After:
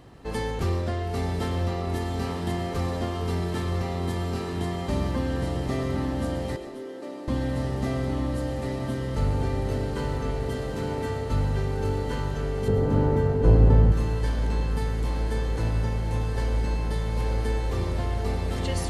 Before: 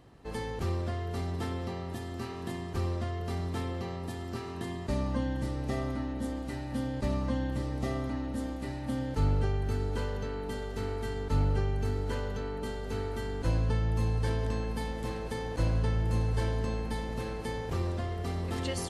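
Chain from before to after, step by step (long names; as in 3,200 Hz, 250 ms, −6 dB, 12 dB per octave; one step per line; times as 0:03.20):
in parallel at −7.5 dB: soft clipping −28 dBFS, distortion −12 dB
on the sum: feedback delay with all-pass diffusion 932 ms, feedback 77%, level −5 dB
speech leveller within 5 dB 2 s
0:06.56–0:07.28: four-pole ladder high-pass 300 Hz, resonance 50%
0:12.68–0:13.92: tilt shelving filter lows +9 dB, about 1,400 Hz
convolution reverb RT60 0.40 s, pre-delay 85 ms, DRR 10 dB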